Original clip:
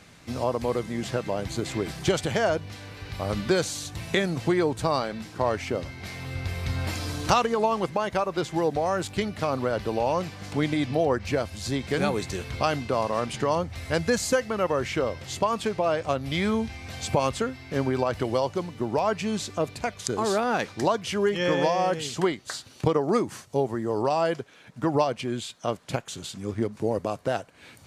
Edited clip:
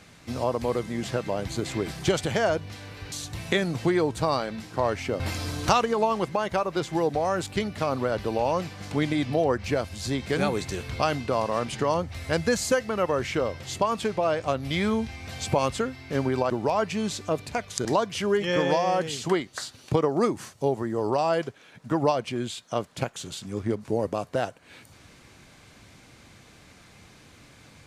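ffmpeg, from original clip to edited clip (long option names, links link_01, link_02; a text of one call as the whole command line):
ffmpeg -i in.wav -filter_complex "[0:a]asplit=5[link_01][link_02][link_03][link_04][link_05];[link_01]atrim=end=3.122[link_06];[link_02]atrim=start=3.738:end=5.822[link_07];[link_03]atrim=start=6.808:end=18.112[link_08];[link_04]atrim=start=18.788:end=20.142[link_09];[link_05]atrim=start=20.768[link_10];[link_06][link_07]acrossfade=duration=0.004:curve1=hsin:curve2=hsin[link_11];[link_11][link_08]acrossfade=duration=0.004:curve1=hsin:curve2=hsin[link_12];[link_12][link_09]acrossfade=duration=0.004:curve1=hsin:curve2=hsin[link_13];[link_13][link_10]acrossfade=duration=0.004:curve1=hsin:curve2=hsin" out.wav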